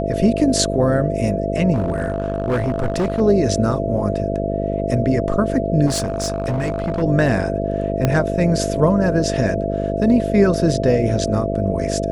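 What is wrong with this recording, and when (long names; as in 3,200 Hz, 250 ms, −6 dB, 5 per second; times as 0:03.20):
mains buzz 50 Hz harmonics 13 −23 dBFS
whistle 670 Hz −24 dBFS
0:01.74–0:03.21: clipping −15 dBFS
0:05.86–0:07.03: clipping −16.5 dBFS
0:08.05: click −4 dBFS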